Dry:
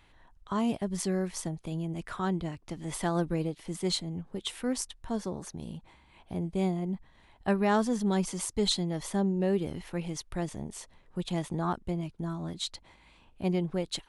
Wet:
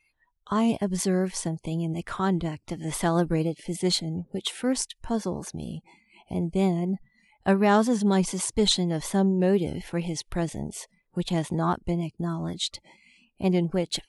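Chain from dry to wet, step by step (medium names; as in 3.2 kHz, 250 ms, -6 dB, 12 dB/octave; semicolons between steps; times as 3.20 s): vibrato 4.1 Hz 38 cents; spectral noise reduction 25 dB; trim +5.5 dB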